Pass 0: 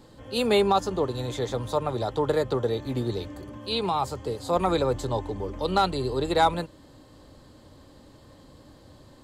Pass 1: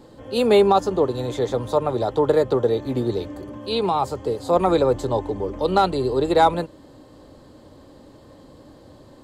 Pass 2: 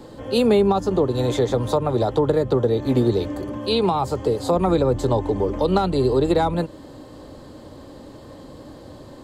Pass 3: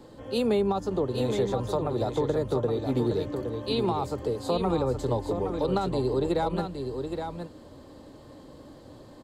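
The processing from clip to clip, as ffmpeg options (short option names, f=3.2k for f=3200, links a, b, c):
-af "equalizer=f=440:w=0.48:g=7"
-filter_complex "[0:a]acrossover=split=260[a][b];[b]acompressor=threshold=-24dB:ratio=10[c];[a][c]amix=inputs=2:normalize=0,volume=6dB"
-af "aecho=1:1:818:0.473,volume=-8dB"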